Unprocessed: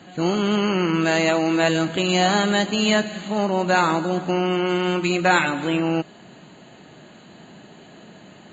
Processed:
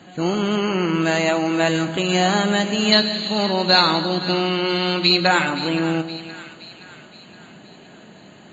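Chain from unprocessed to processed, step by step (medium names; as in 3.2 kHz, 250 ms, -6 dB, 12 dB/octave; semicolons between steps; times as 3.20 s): 2.92–5.27 s: resonant low-pass 4.2 kHz, resonance Q 11; two-band feedback delay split 1.2 kHz, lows 153 ms, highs 520 ms, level -13 dB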